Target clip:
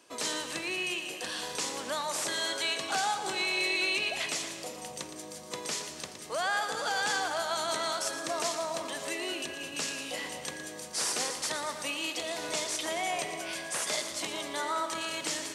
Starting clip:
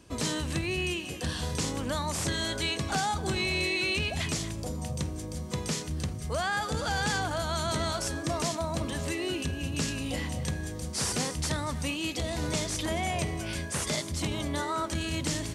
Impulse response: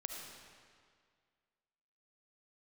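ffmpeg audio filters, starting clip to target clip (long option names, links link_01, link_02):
-filter_complex "[0:a]highpass=490,asplit=2[link_01][link_02];[1:a]atrim=start_sample=2205,adelay=116[link_03];[link_02][link_03]afir=irnorm=-1:irlink=0,volume=-6.5dB[link_04];[link_01][link_04]amix=inputs=2:normalize=0"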